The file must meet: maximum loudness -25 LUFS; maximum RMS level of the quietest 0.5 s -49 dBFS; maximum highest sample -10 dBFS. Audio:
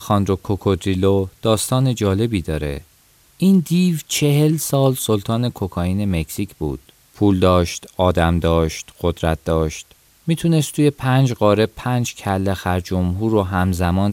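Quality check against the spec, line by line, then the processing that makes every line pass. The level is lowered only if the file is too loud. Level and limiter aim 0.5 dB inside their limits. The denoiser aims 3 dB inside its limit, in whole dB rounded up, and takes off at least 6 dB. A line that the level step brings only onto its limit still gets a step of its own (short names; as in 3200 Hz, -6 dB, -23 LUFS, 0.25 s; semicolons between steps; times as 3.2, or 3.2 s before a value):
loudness -19.0 LUFS: fail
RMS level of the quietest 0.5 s -54 dBFS: OK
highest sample -2.5 dBFS: fail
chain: gain -6.5 dB; limiter -10.5 dBFS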